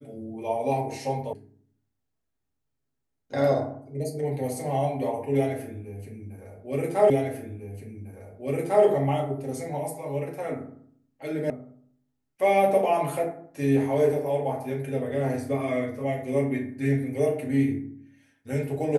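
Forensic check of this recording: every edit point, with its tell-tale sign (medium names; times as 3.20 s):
1.33 s: sound stops dead
7.10 s: repeat of the last 1.75 s
11.50 s: sound stops dead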